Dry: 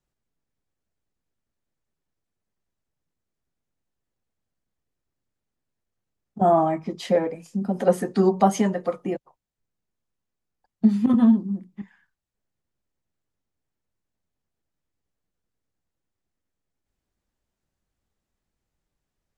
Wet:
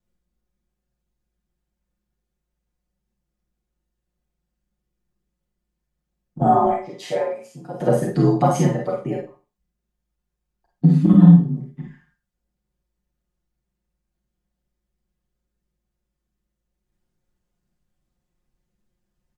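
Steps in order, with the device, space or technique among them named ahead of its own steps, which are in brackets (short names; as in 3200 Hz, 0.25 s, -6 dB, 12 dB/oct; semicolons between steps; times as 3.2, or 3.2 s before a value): 6.66–7.81 HPF 500 Hz 12 dB/oct; low shelf 340 Hz +8 dB; ring-modulated robot voice (ring modulator 54 Hz; comb 5.6 ms, depth 73%); Schroeder reverb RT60 0.34 s, combs from 31 ms, DRR 0.5 dB; gain -1.5 dB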